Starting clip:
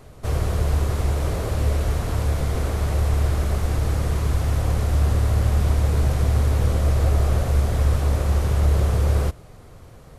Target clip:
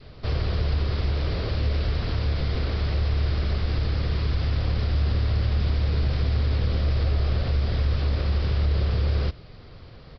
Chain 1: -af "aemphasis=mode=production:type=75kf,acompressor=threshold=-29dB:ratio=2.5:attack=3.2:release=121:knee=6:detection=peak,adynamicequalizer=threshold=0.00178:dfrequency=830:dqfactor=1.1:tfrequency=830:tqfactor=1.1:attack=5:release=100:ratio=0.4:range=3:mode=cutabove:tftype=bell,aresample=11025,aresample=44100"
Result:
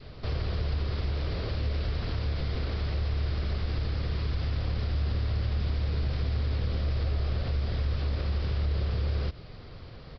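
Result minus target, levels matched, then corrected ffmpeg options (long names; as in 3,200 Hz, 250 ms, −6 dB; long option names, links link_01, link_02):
downward compressor: peak gain reduction +5.5 dB
-af "aemphasis=mode=production:type=75kf,acompressor=threshold=-19.5dB:ratio=2.5:attack=3.2:release=121:knee=6:detection=peak,adynamicequalizer=threshold=0.00178:dfrequency=830:dqfactor=1.1:tfrequency=830:tqfactor=1.1:attack=5:release=100:ratio=0.4:range=3:mode=cutabove:tftype=bell,aresample=11025,aresample=44100"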